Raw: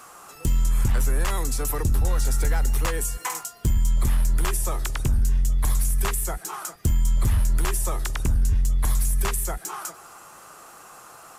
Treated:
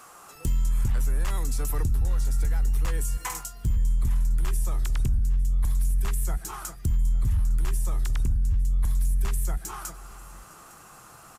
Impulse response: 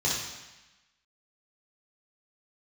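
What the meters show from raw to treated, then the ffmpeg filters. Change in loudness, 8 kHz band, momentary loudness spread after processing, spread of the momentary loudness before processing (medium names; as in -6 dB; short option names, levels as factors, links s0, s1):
-3.0 dB, -7.5 dB, 12 LU, 20 LU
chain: -af "asubboost=boost=3:cutoff=250,alimiter=limit=0.178:level=0:latency=1:release=190,aecho=1:1:857:0.0944,volume=0.708"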